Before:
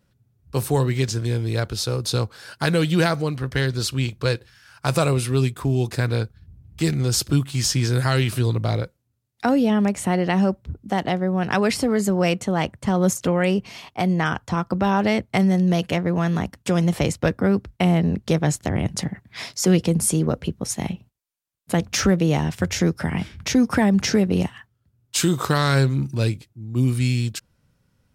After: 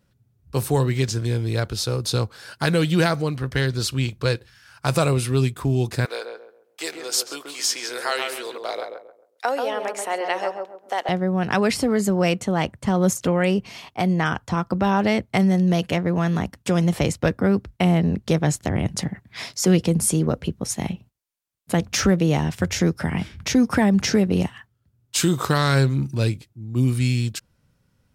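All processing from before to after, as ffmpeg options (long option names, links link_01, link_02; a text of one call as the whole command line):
ffmpeg -i in.wav -filter_complex "[0:a]asettb=1/sr,asplit=3[link_01][link_02][link_03];[link_01]atrim=end=6.054[link_04];[link_02]atrim=start=6.05:end=11.09,asetpts=PTS-STARTPTS,afade=type=in:duration=0.004:curve=qsin,afade=type=out:start_time=5.036:duration=0.004:curve=qsin,highpass=frequency=470:width=0.5412,highpass=frequency=470:width=1.3066,asplit=2[link_05][link_06];[link_06]adelay=135,lowpass=frequency=1200:poles=1,volume=-3.5dB,asplit=2[link_07][link_08];[link_08]adelay=135,lowpass=frequency=1200:poles=1,volume=0.34,asplit=2[link_09][link_10];[link_10]adelay=135,lowpass=frequency=1200:poles=1,volume=0.34,asplit=2[link_11][link_12];[link_12]adelay=135,lowpass=frequency=1200:poles=1,volume=0.34[link_13];[link_05][link_07][link_09][link_11][link_13]amix=inputs=5:normalize=0,atrim=end_sample=222264[link_14];[link_03]atrim=start=11.086[link_15];[link_04][link_14]acrossfade=duration=0.004:curve1=hsin:curve2=qsin[link_16];[link_16][link_15]acrossfade=duration=0.004:curve1=qsin:curve2=hsin" out.wav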